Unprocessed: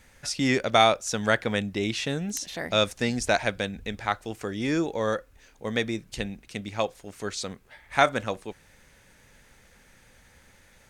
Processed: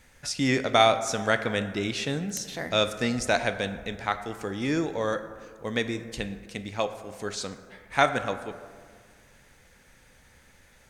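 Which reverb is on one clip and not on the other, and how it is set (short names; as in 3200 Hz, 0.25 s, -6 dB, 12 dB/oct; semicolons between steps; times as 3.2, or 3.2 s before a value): plate-style reverb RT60 1.8 s, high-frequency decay 0.4×, DRR 9 dB; gain -1 dB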